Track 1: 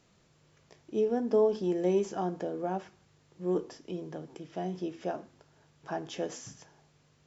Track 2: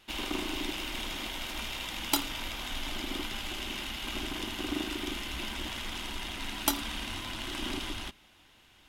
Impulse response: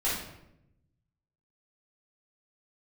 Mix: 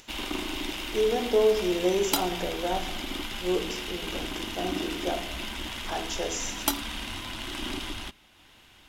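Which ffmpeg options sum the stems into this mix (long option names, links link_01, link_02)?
-filter_complex "[0:a]bass=frequency=250:gain=-12,treble=frequency=4000:gain=10,volume=1.5dB,asplit=2[link_01][link_02];[link_02]volume=-12dB[link_03];[1:a]volume=1.5dB[link_04];[2:a]atrim=start_sample=2205[link_05];[link_03][link_05]afir=irnorm=-1:irlink=0[link_06];[link_01][link_04][link_06]amix=inputs=3:normalize=0,acompressor=mode=upward:threshold=-49dB:ratio=2.5"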